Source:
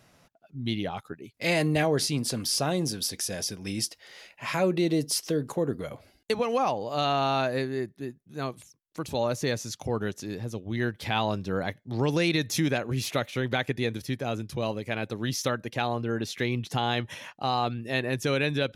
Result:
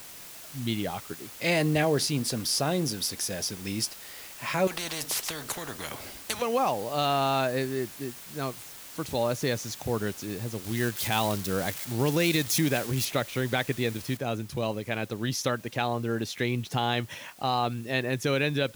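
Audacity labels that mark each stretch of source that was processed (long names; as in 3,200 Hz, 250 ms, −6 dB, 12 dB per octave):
4.670000	6.420000	every bin compressed towards the loudest bin 4 to 1
10.640000	13.050000	spike at every zero crossing of −24 dBFS
14.170000	14.170000	noise floor change −45 dB −54 dB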